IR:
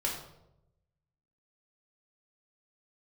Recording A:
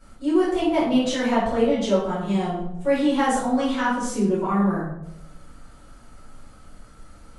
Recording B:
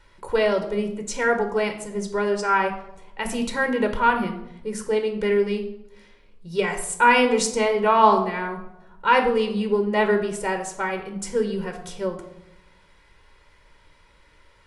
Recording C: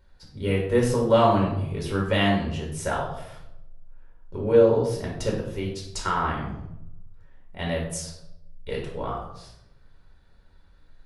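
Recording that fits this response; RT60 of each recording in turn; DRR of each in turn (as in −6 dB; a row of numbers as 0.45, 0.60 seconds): C; 0.85, 0.85, 0.85 seconds; −11.5, 4.5, −2.5 decibels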